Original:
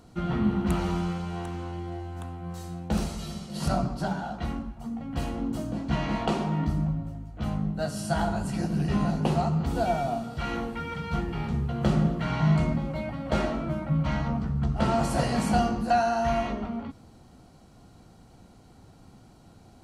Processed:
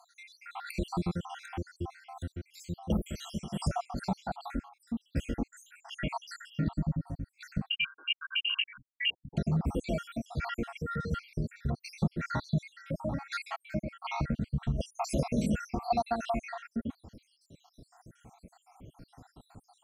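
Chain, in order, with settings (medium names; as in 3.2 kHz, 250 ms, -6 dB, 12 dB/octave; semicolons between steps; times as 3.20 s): random holes in the spectrogram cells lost 75%; 7.69–9.37 s: frequency inversion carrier 3 kHz; compression 2:1, threshold -33 dBFS, peak gain reduction 8 dB; trim +3.5 dB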